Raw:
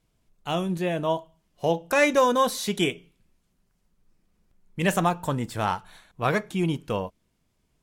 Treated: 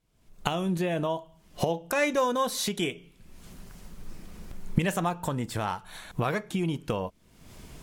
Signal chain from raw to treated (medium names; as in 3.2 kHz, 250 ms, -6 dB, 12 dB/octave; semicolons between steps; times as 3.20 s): recorder AGC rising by 51 dB/s; 5.68–6.34 s: treble shelf 9.2 kHz +5 dB; trim -5.5 dB